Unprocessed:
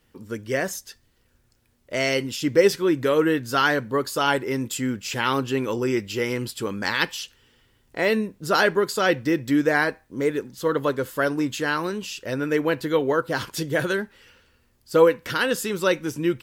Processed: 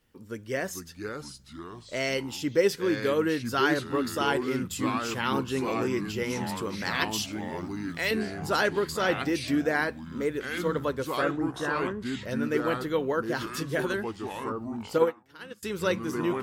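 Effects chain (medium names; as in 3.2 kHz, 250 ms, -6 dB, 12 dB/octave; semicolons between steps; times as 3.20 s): 7.11–8.11 s: tilt shelf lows -9.5 dB, about 1.5 kHz; 11.21–12.21 s: steep low-pass 1.9 kHz 96 dB/octave; ever faster or slower copies 366 ms, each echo -4 st, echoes 3, each echo -6 dB; 14.98–15.63 s: upward expansion 2.5:1, over -30 dBFS; trim -6 dB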